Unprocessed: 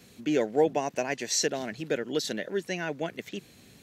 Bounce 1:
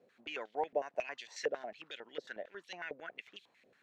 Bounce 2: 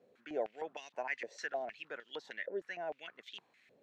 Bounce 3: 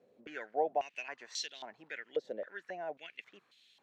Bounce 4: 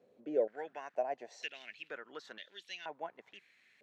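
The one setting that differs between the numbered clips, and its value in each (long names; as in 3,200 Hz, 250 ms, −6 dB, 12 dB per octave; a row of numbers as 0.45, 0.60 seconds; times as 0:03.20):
band-pass on a step sequencer, speed: 11, 6.5, 3.7, 2.1 Hertz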